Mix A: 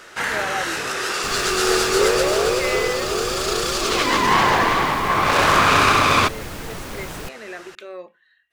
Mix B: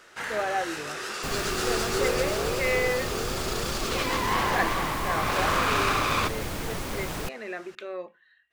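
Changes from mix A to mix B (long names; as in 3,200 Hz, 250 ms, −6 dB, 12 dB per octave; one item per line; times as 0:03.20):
speech: add high-shelf EQ 5,500 Hz −10 dB
first sound −10.0 dB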